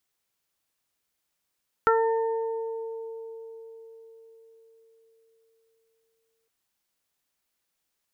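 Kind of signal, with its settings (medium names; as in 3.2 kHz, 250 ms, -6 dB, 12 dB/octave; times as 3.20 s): additive tone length 4.61 s, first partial 452 Hz, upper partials -3/5/-11 dB, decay 4.96 s, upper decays 2.64/0.25/1.19 s, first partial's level -20 dB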